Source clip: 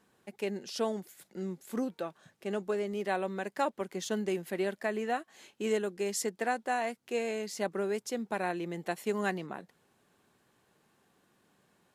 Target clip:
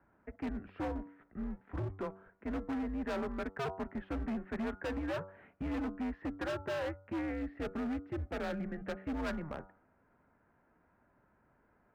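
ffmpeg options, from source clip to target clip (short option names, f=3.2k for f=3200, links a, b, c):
-filter_complex "[0:a]acrossover=split=140[a][b];[a]acrusher=samples=42:mix=1:aa=0.000001:lfo=1:lforange=42:lforate=0.27[c];[c][b]amix=inputs=2:normalize=0,highpass=f=210:t=q:w=0.5412,highpass=f=210:t=q:w=1.307,lowpass=f=2.1k:t=q:w=0.5176,lowpass=f=2.1k:t=q:w=0.7071,lowpass=f=2.1k:t=q:w=1.932,afreqshift=-150,bandreject=f=95.8:t=h:w=4,bandreject=f=191.6:t=h:w=4,bandreject=f=287.4:t=h:w=4,bandreject=f=383.2:t=h:w=4,bandreject=f=479:t=h:w=4,bandreject=f=574.8:t=h:w=4,bandreject=f=670.6:t=h:w=4,bandreject=f=766.4:t=h:w=4,bandreject=f=862.2:t=h:w=4,bandreject=f=958:t=h:w=4,bandreject=f=1.0538k:t=h:w=4,bandreject=f=1.1496k:t=h:w=4,bandreject=f=1.2454k:t=h:w=4,bandreject=f=1.3412k:t=h:w=4,bandreject=f=1.437k:t=h:w=4,volume=34.5dB,asoftclip=hard,volume=-34.5dB,asettb=1/sr,asplit=3[d][e][f];[d]atrim=end=7.214[g];[e]atrim=start=7.21:end=9.2,asetpts=PTS-STARTPTS,afade=t=in:d=0.004:c=qsin,afade=t=out:st=1.986:d=0.004:c=qsin,equalizer=f=1k:t=o:w=0.3:g=-9.5[h];[f]atrim=start=9.196[i];[g][h]acrossfade=d=0.004:c1=hsin:c2=qsin[j];[j][i]acrossfade=d=0.004:c1=qsin:c2=hsin,volume=1dB"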